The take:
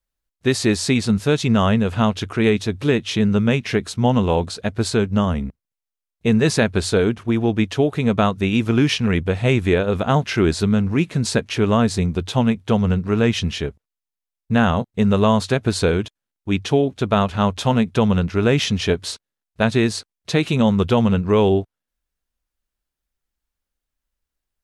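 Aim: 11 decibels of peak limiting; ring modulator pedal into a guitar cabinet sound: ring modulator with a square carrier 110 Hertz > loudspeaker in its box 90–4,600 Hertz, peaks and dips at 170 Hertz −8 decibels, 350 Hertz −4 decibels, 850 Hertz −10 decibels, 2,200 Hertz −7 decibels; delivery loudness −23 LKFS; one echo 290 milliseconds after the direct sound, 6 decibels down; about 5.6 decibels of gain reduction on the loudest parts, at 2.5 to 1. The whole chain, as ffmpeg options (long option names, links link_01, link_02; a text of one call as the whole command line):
ffmpeg -i in.wav -af "acompressor=threshold=-20dB:ratio=2.5,alimiter=limit=-19.5dB:level=0:latency=1,aecho=1:1:290:0.501,aeval=exprs='val(0)*sgn(sin(2*PI*110*n/s))':channel_layout=same,highpass=90,equalizer=frequency=170:width_type=q:width=4:gain=-8,equalizer=frequency=350:width_type=q:width=4:gain=-4,equalizer=frequency=850:width_type=q:width=4:gain=-10,equalizer=frequency=2200:width_type=q:width=4:gain=-7,lowpass=frequency=4600:width=0.5412,lowpass=frequency=4600:width=1.3066,volume=8.5dB" out.wav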